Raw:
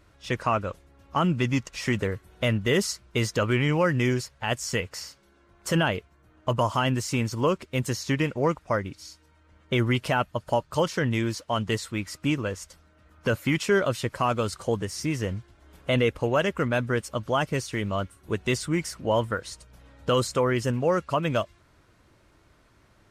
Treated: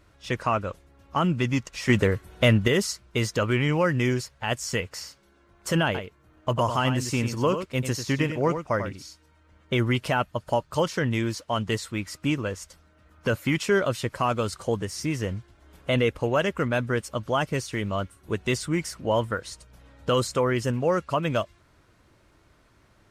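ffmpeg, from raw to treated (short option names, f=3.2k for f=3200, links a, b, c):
-filter_complex "[0:a]asettb=1/sr,asplit=3[a][b][c];[a]atrim=end=1.894[d];[b]atrim=start=1.89:end=2.68,asetpts=PTS-STARTPTS,afade=t=in:d=0.004:c=qsin,afade=t=out:st=0.786:d=0.004:c=qsin,acontrast=49[e];[c]atrim=start=2.676[f];[d][e]acrossfade=d=0.004:c1=hsin:c2=qsin[g];[g][f]acrossfade=d=0.004:c1=qsin:c2=hsin,asettb=1/sr,asplit=3[h][i][j];[h]atrim=end=5.854[k];[i]atrim=start=5.85:end=9.05,asetpts=PTS-STARTPTS,afade=t=in:d=0.004:c=qsin,afade=t=out:st=3.196:d=0.004:c=qsin,aecho=1:1:94:0.376,atrim=end_sample=141120[l];[j]atrim=start=9.046[m];[k][l]acrossfade=d=0.004:c1=hsin:c2=qsin[n];[n][m]acrossfade=d=0.004:c1=qsin:c2=hsin"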